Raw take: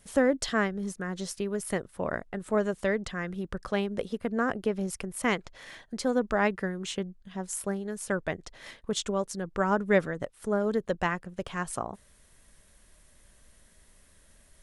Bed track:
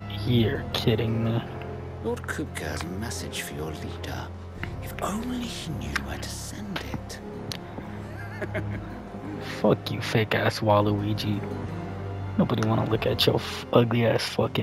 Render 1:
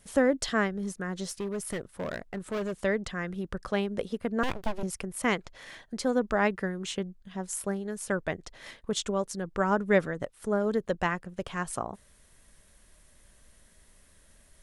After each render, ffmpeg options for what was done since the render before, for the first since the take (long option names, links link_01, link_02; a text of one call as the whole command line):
ffmpeg -i in.wav -filter_complex "[0:a]asettb=1/sr,asplit=3[link_01][link_02][link_03];[link_01]atrim=end=1.244[link_04];[link_02]atrim=start=1.24:end=2.8,asetpts=PTS-STARTPTS,afade=type=in:duration=0.004:curve=qsin,afade=type=out:start_time=1.556:duration=0.004:curve=qsin,asoftclip=type=hard:threshold=-28.5dB[link_05];[link_03]atrim=start=2.796[link_06];[link_04][link_05]acrossfade=duration=0.004:curve1=hsin:curve2=qsin[link_07];[link_07][link_06]acrossfade=duration=0.004:curve1=qsin:curve2=hsin,asettb=1/sr,asplit=3[link_08][link_09][link_10];[link_08]atrim=end=4.434[link_11];[link_09]atrim=start=4.43:end=4.83,asetpts=PTS-STARTPTS,afade=type=in:duration=0.004:curve=qsin,afade=type=out:start_time=0.396:duration=0.004:curve=qsin,aeval=exprs='abs(val(0))':channel_layout=same[link_12];[link_10]atrim=start=4.826[link_13];[link_11][link_12]acrossfade=duration=0.004:curve1=hsin:curve2=qsin[link_14];[link_14][link_13]acrossfade=duration=0.004:curve1=qsin:curve2=hsin" out.wav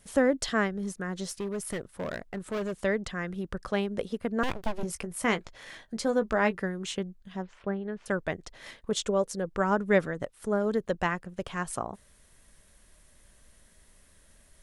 ffmpeg -i in.wav -filter_complex "[0:a]asettb=1/sr,asplit=3[link_01][link_02][link_03];[link_01]atrim=end=4.754[link_04];[link_02]atrim=start=4.75:end=6.59,asetpts=PTS-STARTPTS,afade=type=in:duration=0.004:curve=qsin,afade=type=out:start_time=1.836:duration=0.004:curve=qsin,asplit=2[link_05][link_06];[link_06]adelay=18,volume=-10dB[link_07];[link_05][link_07]amix=inputs=2:normalize=0,atrim=end_sample=81144[link_08];[link_03]atrim=start=6.586[link_09];[link_04][link_08]acrossfade=duration=0.004:curve1=hsin:curve2=qsin[link_10];[link_10][link_09]acrossfade=duration=0.004:curve1=qsin:curve2=hsin,asettb=1/sr,asplit=3[link_11][link_12][link_13];[link_11]atrim=end=7.424[link_14];[link_12]atrim=start=7.42:end=8.06,asetpts=PTS-STARTPTS,afade=type=in:duration=0.004:curve=qsin,afade=type=out:start_time=0.636:duration=0.004:curve=qsin,lowpass=frequency=3100:width=0.5412,lowpass=frequency=3100:width=1.3066[link_15];[link_13]atrim=start=8.056[link_16];[link_14][link_15]acrossfade=duration=0.004:curve1=hsin:curve2=qsin[link_17];[link_17][link_16]acrossfade=duration=0.004:curve1=qsin:curve2=hsin,asettb=1/sr,asplit=3[link_18][link_19][link_20];[link_18]atrim=end=8.914[link_21];[link_19]atrim=start=8.91:end=9.48,asetpts=PTS-STARTPTS,afade=type=in:duration=0.004:curve=qsin,afade=type=out:start_time=0.566:duration=0.004:curve=qsin,equalizer=frequency=500:width=2.9:gain=8.5[link_22];[link_20]atrim=start=9.476[link_23];[link_21][link_22]acrossfade=duration=0.004:curve1=hsin:curve2=qsin[link_24];[link_24][link_23]acrossfade=duration=0.004:curve1=qsin:curve2=hsin" out.wav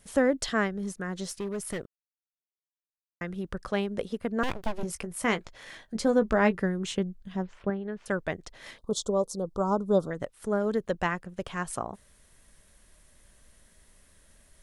ffmpeg -i in.wav -filter_complex "[0:a]asettb=1/sr,asplit=3[link_01][link_02][link_03];[link_01]atrim=end=5.954[link_04];[link_02]atrim=start=5.95:end=7.7,asetpts=PTS-STARTPTS,afade=type=in:duration=0.004:curve=qsin,afade=type=out:start_time=1.746:duration=0.004:curve=qsin,lowshelf=frequency=440:gain=6[link_05];[link_03]atrim=start=7.696[link_06];[link_04][link_05]acrossfade=duration=0.004:curve1=hsin:curve2=qsin[link_07];[link_07][link_06]acrossfade=duration=0.004:curve1=qsin:curve2=hsin,asettb=1/sr,asplit=3[link_08][link_09][link_10];[link_08]atrim=end=8.784[link_11];[link_09]atrim=start=8.78:end=10.11,asetpts=PTS-STARTPTS,afade=type=in:duration=0.004:curve=qsin,afade=type=out:start_time=1.326:duration=0.004:curve=qsin,asuperstop=centerf=2100:order=8:qfactor=0.9[link_12];[link_10]atrim=start=10.106[link_13];[link_11][link_12]acrossfade=duration=0.004:curve1=hsin:curve2=qsin[link_14];[link_14][link_13]acrossfade=duration=0.004:curve1=qsin:curve2=hsin,asplit=3[link_15][link_16][link_17];[link_15]atrim=end=1.86,asetpts=PTS-STARTPTS,afade=type=out:start_time=1.856:duration=0.004:curve=hsin[link_18];[link_16]atrim=start=1.86:end=3.21,asetpts=PTS-STARTPTS,volume=0[link_19];[link_17]atrim=start=3.21,asetpts=PTS-STARTPTS,afade=type=in:duration=0.004:curve=hsin[link_20];[link_18][link_19][link_20]concat=n=3:v=0:a=1" out.wav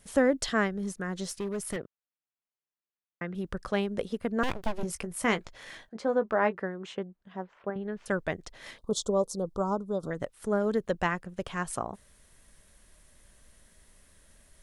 ffmpeg -i in.wav -filter_complex "[0:a]asettb=1/sr,asplit=3[link_01][link_02][link_03];[link_01]atrim=end=1.764[link_04];[link_02]atrim=start=1.76:end=3.35,asetpts=PTS-STARTPTS,afade=type=in:duration=0.004:curve=qsin,afade=type=out:start_time=1.586:duration=0.004:curve=qsin,highpass=110,lowpass=2900[link_05];[link_03]atrim=start=3.346[link_06];[link_04][link_05]acrossfade=duration=0.004:curve1=hsin:curve2=qsin[link_07];[link_07][link_06]acrossfade=duration=0.004:curve1=qsin:curve2=hsin,asettb=1/sr,asplit=3[link_08][link_09][link_10];[link_08]atrim=end=5.894[link_11];[link_09]atrim=start=5.89:end=7.76,asetpts=PTS-STARTPTS,afade=type=in:duration=0.004:curve=qsin,afade=type=out:start_time=1.866:duration=0.004:curve=qsin,bandpass=frequency=890:width_type=q:width=0.69[link_12];[link_10]atrim=start=7.756[link_13];[link_11][link_12]acrossfade=duration=0.004:curve1=hsin:curve2=qsin[link_14];[link_14][link_13]acrossfade=duration=0.004:curve1=qsin:curve2=hsin,asplit=2[link_15][link_16];[link_15]atrim=end=10.03,asetpts=PTS-STARTPTS,afade=type=out:start_time=9.49:duration=0.54:silence=0.281838[link_17];[link_16]atrim=start=10.03,asetpts=PTS-STARTPTS,afade=type=in:duration=0.004:curve=hsin:silence=0.281838[link_18];[link_17][link_18]concat=n=2:v=0:a=1" out.wav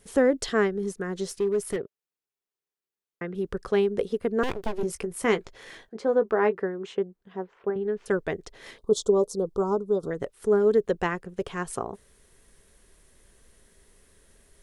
ffmpeg -i in.wav -af "equalizer=frequency=410:width_type=o:width=0.5:gain=11,bandreject=frequency=600:width=13" out.wav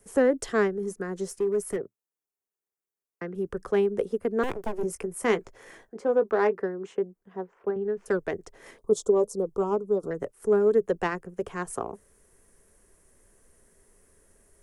ffmpeg -i in.wav -filter_complex "[0:a]acrossover=split=230|450|5100[link_01][link_02][link_03][link_04];[link_01]flanger=delay=9:depth=4.4:regen=-43:speed=1.8:shape=triangular[link_05];[link_03]adynamicsmooth=sensitivity=1.5:basefreq=2200[link_06];[link_05][link_02][link_06][link_04]amix=inputs=4:normalize=0" out.wav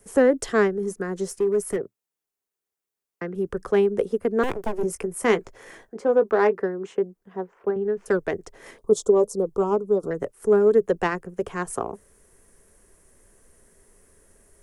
ffmpeg -i in.wav -af "volume=4dB" out.wav